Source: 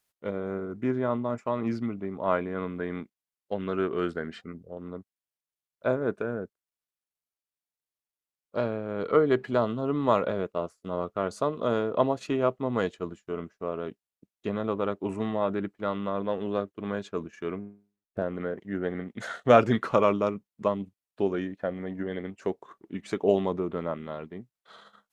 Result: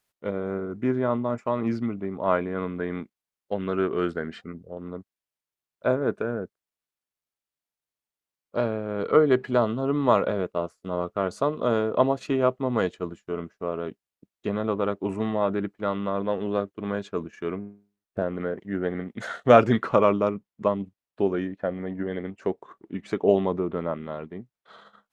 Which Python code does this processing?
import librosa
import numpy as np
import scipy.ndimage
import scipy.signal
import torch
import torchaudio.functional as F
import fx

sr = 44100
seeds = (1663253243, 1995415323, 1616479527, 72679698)

y = fx.high_shelf(x, sr, hz=4200.0, db=fx.steps((0.0, -4.5), (19.81, -10.5)))
y = y * librosa.db_to_amplitude(3.0)